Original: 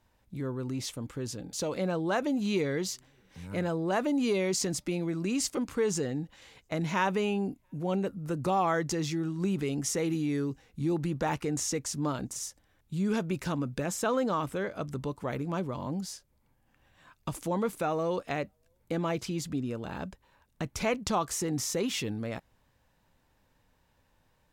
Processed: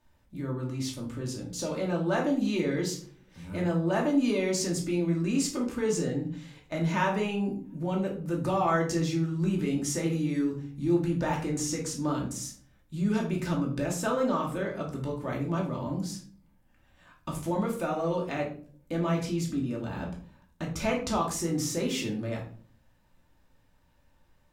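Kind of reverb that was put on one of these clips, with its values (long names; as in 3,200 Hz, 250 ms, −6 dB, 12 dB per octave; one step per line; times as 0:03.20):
rectangular room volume 430 cubic metres, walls furnished, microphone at 2.6 metres
level −3.5 dB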